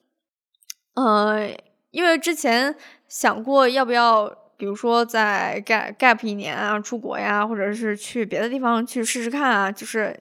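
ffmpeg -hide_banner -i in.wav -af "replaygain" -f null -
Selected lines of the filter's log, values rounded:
track_gain = +0.6 dB
track_peak = 0.583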